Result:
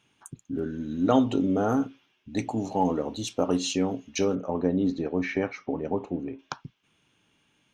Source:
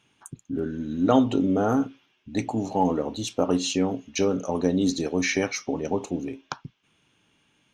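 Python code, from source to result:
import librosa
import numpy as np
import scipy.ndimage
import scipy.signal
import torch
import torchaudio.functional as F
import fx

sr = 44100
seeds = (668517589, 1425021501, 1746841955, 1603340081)

y = fx.lowpass(x, sr, hz=1900.0, slope=12, at=(4.35, 6.39))
y = y * 10.0 ** (-2.0 / 20.0)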